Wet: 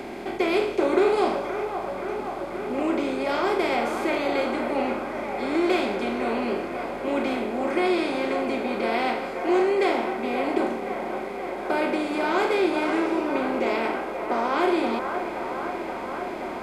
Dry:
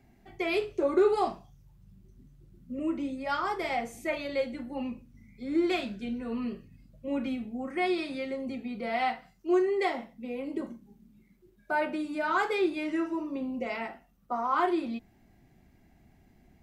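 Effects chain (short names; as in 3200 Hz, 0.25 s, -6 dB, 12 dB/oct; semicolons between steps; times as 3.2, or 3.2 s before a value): per-bin compression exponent 0.4; bell 1300 Hz -5 dB 0.98 oct; on a send: band-limited delay 0.527 s, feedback 79%, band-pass 970 Hz, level -5.5 dB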